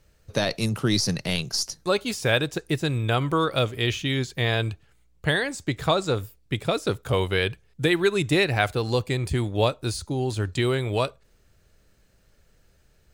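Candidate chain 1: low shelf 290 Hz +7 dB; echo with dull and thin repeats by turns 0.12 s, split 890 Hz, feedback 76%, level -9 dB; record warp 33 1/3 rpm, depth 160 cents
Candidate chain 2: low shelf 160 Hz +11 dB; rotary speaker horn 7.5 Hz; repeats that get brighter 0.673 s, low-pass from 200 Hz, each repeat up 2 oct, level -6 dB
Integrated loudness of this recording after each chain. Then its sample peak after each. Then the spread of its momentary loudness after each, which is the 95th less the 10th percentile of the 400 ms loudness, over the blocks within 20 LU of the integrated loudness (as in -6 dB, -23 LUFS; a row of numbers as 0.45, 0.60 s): -21.5, -23.5 LUFS; -6.0, -4.5 dBFS; 7, 8 LU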